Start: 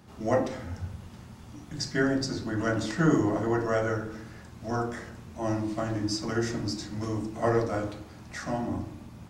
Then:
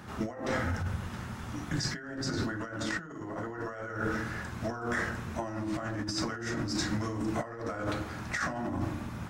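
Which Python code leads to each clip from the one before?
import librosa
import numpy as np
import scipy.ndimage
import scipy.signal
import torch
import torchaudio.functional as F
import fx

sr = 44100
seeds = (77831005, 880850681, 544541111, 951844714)

y = fx.peak_eq(x, sr, hz=1500.0, db=8.5, octaves=1.1)
y = fx.notch(y, sr, hz=4600.0, q=25.0)
y = fx.over_compress(y, sr, threshold_db=-35.0, ratio=-1.0)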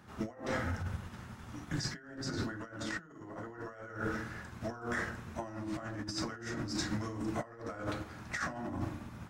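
y = fx.upward_expand(x, sr, threshold_db=-44.0, expansion=1.5)
y = y * librosa.db_to_amplitude(-3.0)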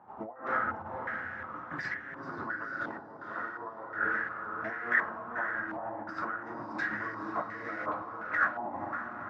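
y = fx.highpass(x, sr, hz=660.0, slope=6)
y = fx.echo_diffused(y, sr, ms=497, feedback_pct=43, wet_db=-5.0)
y = fx.filter_held_lowpass(y, sr, hz=2.8, low_hz=850.0, high_hz=1900.0)
y = y * librosa.db_to_amplitude(2.0)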